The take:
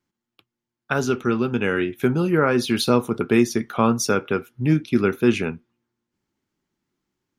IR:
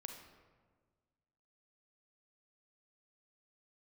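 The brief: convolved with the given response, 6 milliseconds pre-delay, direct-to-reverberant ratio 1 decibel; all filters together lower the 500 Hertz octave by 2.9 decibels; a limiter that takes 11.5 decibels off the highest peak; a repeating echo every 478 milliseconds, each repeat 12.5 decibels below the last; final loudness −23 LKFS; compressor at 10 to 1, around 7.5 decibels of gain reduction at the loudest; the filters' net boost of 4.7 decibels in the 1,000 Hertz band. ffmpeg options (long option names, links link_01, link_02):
-filter_complex "[0:a]equalizer=frequency=500:width_type=o:gain=-5.5,equalizer=frequency=1000:width_type=o:gain=7.5,acompressor=threshold=-19dB:ratio=10,alimiter=limit=-17.5dB:level=0:latency=1,aecho=1:1:478|956|1434:0.237|0.0569|0.0137,asplit=2[link_01][link_02];[1:a]atrim=start_sample=2205,adelay=6[link_03];[link_02][link_03]afir=irnorm=-1:irlink=0,volume=3dB[link_04];[link_01][link_04]amix=inputs=2:normalize=0,volume=3dB"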